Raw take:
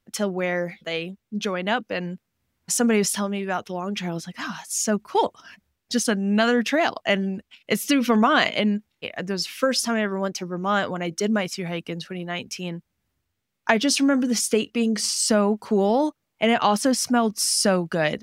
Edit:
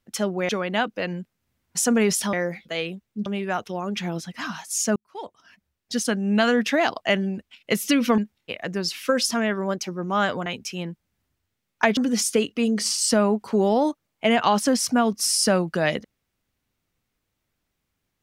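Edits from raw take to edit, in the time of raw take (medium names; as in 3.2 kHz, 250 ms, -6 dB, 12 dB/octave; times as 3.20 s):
0.49–1.42 s: move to 3.26 s
4.96–6.33 s: fade in
8.18–8.72 s: delete
11.00–12.32 s: delete
13.83–14.15 s: delete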